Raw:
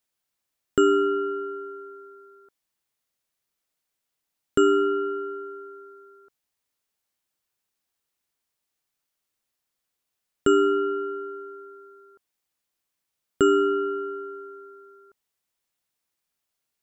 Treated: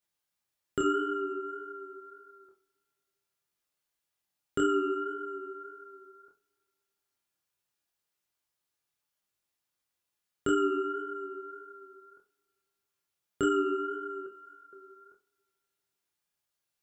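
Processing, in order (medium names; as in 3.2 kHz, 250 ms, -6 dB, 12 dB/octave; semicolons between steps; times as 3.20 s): chorus 1.7 Hz, depth 7.3 ms; 14.26–14.73 s: elliptic high-pass 1.5 kHz; two-slope reverb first 0.29 s, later 2.1 s, from -27 dB, DRR 1.5 dB; in parallel at -3 dB: compression, threshold -35 dBFS, peak gain reduction 17.5 dB; on the sum: trim -7 dB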